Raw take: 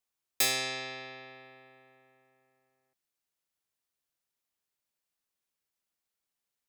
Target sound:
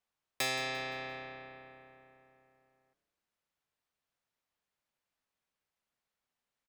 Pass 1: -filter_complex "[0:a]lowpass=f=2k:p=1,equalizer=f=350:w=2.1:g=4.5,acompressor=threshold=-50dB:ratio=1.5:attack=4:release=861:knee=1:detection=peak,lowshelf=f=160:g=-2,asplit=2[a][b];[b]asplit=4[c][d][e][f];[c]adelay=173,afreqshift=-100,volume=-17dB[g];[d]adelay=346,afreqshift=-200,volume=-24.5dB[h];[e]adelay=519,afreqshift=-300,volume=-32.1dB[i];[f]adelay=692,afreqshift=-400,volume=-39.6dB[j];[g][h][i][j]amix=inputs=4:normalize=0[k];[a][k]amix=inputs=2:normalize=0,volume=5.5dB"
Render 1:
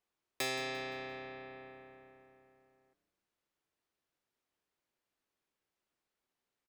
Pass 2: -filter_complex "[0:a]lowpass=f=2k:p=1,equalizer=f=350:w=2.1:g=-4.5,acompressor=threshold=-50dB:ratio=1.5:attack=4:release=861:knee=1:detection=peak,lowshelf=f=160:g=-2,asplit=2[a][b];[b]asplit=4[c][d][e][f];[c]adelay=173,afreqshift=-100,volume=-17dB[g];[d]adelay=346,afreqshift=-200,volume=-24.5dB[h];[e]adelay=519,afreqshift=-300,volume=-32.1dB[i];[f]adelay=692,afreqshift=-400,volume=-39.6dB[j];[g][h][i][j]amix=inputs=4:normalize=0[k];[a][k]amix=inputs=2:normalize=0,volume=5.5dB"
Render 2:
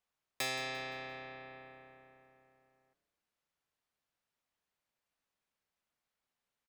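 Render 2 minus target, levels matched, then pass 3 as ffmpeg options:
compressor: peak gain reduction +3 dB
-filter_complex "[0:a]lowpass=f=2k:p=1,equalizer=f=350:w=2.1:g=-4.5,acompressor=threshold=-40.5dB:ratio=1.5:attack=4:release=861:knee=1:detection=peak,lowshelf=f=160:g=-2,asplit=2[a][b];[b]asplit=4[c][d][e][f];[c]adelay=173,afreqshift=-100,volume=-17dB[g];[d]adelay=346,afreqshift=-200,volume=-24.5dB[h];[e]adelay=519,afreqshift=-300,volume=-32.1dB[i];[f]adelay=692,afreqshift=-400,volume=-39.6dB[j];[g][h][i][j]amix=inputs=4:normalize=0[k];[a][k]amix=inputs=2:normalize=0,volume=5.5dB"

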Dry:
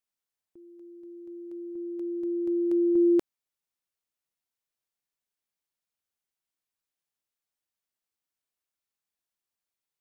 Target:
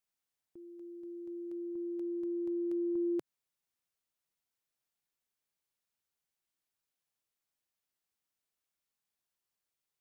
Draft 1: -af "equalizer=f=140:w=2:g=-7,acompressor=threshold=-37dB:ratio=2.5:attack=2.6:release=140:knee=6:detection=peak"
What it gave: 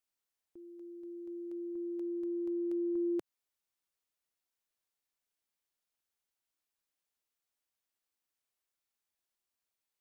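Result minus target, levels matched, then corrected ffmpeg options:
125 Hz band -5.0 dB
-af "equalizer=f=140:w=2:g=2.5,acompressor=threshold=-37dB:ratio=2.5:attack=2.6:release=140:knee=6:detection=peak"

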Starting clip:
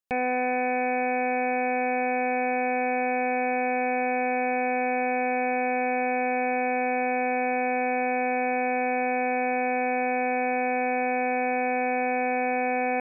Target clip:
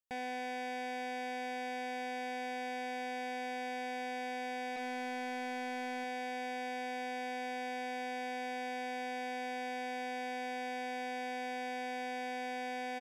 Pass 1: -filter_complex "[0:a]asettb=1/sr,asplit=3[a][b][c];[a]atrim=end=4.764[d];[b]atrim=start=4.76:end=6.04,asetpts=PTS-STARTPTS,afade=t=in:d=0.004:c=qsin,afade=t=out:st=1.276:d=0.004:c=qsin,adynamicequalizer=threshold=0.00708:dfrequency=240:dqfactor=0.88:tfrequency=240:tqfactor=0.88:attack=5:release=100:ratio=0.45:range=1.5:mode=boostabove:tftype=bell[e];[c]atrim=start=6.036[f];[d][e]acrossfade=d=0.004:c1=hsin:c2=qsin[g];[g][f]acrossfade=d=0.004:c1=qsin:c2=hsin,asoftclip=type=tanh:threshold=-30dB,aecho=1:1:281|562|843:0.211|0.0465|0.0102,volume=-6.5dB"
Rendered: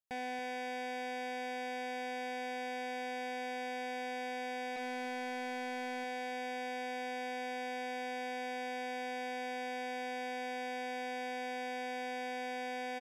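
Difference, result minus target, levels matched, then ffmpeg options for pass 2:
echo-to-direct +9.5 dB
-filter_complex "[0:a]asettb=1/sr,asplit=3[a][b][c];[a]atrim=end=4.764[d];[b]atrim=start=4.76:end=6.04,asetpts=PTS-STARTPTS,afade=t=in:d=0.004:c=qsin,afade=t=out:st=1.276:d=0.004:c=qsin,adynamicequalizer=threshold=0.00708:dfrequency=240:dqfactor=0.88:tfrequency=240:tqfactor=0.88:attack=5:release=100:ratio=0.45:range=1.5:mode=boostabove:tftype=bell[e];[c]atrim=start=6.036[f];[d][e]acrossfade=d=0.004:c1=hsin:c2=qsin[g];[g][f]acrossfade=d=0.004:c1=qsin:c2=hsin,asoftclip=type=tanh:threshold=-30dB,aecho=1:1:281|562:0.0708|0.0156,volume=-6.5dB"

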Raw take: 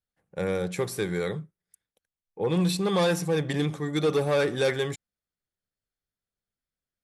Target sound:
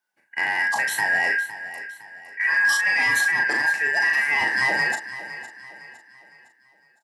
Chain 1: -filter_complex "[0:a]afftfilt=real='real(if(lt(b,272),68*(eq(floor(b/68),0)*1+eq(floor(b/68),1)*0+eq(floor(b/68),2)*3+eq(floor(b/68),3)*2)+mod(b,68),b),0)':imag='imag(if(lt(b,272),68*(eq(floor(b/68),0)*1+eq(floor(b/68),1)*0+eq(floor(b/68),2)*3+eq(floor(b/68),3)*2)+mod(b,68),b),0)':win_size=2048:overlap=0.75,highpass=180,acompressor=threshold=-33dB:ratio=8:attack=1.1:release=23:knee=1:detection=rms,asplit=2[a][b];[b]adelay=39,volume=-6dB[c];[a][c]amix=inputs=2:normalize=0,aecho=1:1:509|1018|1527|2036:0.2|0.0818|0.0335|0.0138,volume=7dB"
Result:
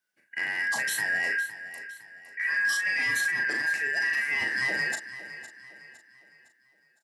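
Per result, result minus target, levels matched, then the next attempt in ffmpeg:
1000 Hz band -8.0 dB; compressor: peak gain reduction +5 dB
-filter_complex "[0:a]afftfilt=real='real(if(lt(b,272),68*(eq(floor(b/68),0)*1+eq(floor(b/68),1)*0+eq(floor(b/68),2)*3+eq(floor(b/68),3)*2)+mod(b,68),b),0)':imag='imag(if(lt(b,272),68*(eq(floor(b/68),0)*1+eq(floor(b/68),1)*0+eq(floor(b/68),2)*3+eq(floor(b/68),3)*2)+mod(b,68),b),0)':win_size=2048:overlap=0.75,highpass=180,equalizer=f=870:w=2.5:g=14,acompressor=threshold=-33dB:ratio=8:attack=1.1:release=23:knee=1:detection=rms,asplit=2[a][b];[b]adelay=39,volume=-6dB[c];[a][c]amix=inputs=2:normalize=0,aecho=1:1:509|1018|1527|2036:0.2|0.0818|0.0335|0.0138,volume=7dB"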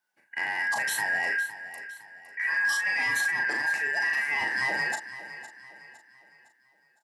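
compressor: peak gain reduction +6.5 dB
-filter_complex "[0:a]afftfilt=real='real(if(lt(b,272),68*(eq(floor(b/68),0)*1+eq(floor(b/68),1)*0+eq(floor(b/68),2)*3+eq(floor(b/68),3)*2)+mod(b,68),b),0)':imag='imag(if(lt(b,272),68*(eq(floor(b/68),0)*1+eq(floor(b/68),1)*0+eq(floor(b/68),2)*3+eq(floor(b/68),3)*2)+mod(b,68),b),0)':win_size=2048:overlap=0.75,highpass=180,equalizer=f=870:w=2.5:g=14,acompressor=threshold=-25.5dB:ratio=8:attack=1.1:release=23:knee=1:detection=rms,asplit=2[a][b];[b]adelay=39,volume=-6dB[c];[a][c]amix=inputs=2:normalize=0,aecho=1:1:509|1018|1527|2036:0.2|0.0818|0.0335|0.0138,volume=7dB"

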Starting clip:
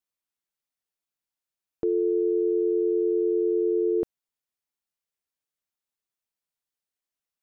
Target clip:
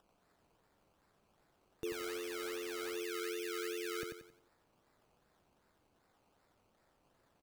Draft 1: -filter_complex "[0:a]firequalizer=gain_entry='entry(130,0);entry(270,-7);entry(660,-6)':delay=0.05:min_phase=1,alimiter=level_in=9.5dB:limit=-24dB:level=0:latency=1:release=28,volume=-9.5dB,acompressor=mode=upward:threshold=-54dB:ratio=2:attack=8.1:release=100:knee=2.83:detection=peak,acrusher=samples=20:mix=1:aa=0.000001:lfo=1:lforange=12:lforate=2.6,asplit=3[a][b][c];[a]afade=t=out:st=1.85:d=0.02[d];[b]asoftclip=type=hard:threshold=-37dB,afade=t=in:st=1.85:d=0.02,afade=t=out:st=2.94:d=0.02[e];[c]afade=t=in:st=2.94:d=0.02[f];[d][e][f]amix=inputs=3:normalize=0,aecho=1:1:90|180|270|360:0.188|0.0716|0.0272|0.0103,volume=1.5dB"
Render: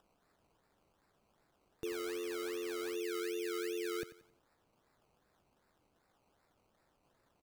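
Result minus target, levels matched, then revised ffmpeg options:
echo-to-direct -9.5 dB
-filter_complex "[0:a]firequalizer=gain_entry='entry(130,0);entry(270,-7);entry(660,-6)':delay=0.05:min_phase=1,alimiter=level_in=9.5dB:limit=-24dB:level=0:latency=1:release=28,volume=-9.5dB,acompressor=mode=upward:threshold=-54dB:ratio=2:attack=8.1:release=100:knee=2.83:detection=peak,acrusher=samples=20:mix=1:aa=0.000001:lfo=1:lforange=12:lforate=2.6,asplit=3[a][b][c];[a]afade=t=out:st=1.85:d=0.02[d];[b]asoftclip=type=hard:threshold=-37dB,afade=t=in:st=1.85:d=0.02,afade=t=out:st=2.94:d=0.02[e];[c]afade=t=in:st=2.94:d=0.02[f];[d][e][f]amix=inputs=3:normalize=0,aecho=1:1:90|180|270|360|450:0.562|0.214|0.0812|0.0309|0.0117,volume=1.5dB"

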